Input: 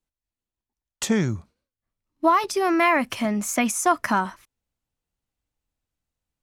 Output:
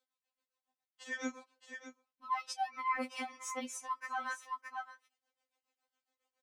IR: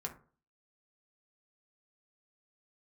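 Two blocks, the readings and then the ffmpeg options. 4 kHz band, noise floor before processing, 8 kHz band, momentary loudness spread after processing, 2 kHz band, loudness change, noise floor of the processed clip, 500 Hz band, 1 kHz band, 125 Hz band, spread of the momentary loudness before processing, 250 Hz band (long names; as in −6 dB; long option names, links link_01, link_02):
−14.0 dB, below −85 dBFS, −17.0 dB, 15 LU, −14.0 dB, −17.5 dB, below −85 dBFS, −23.0 dB, −14.0 dB, below −40 dB, 9 LU, −22.0 dB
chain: -filter_complex "[0:a]equalizer=frequency=12000:width_type=o:width=0.45:gain=-13.5,tremolo=f=7.2:d=0.94,highpass=frequency=380:width=0.5412,highpass=frequency=380:width=1.3066,asplit=2[link_01][link_02];[link_02]aecho=0:1:619:0.0891[link_03];[link_01][link_03]amix=inputs=2:normalize=0,alimiter=limit=-18dB:level=0:latency=1:release=97,areverse,acompressor=threshold=-45dB:ratio=4,areverse,highshelf=frequency=5800:gain=-6,afftfilt=real='re*3.46*eq(mod(b,12),0)':imag='im*3.46*eq(mod(b,12),0)':win_size=2048:overlap=0.75,volume=10.5dB"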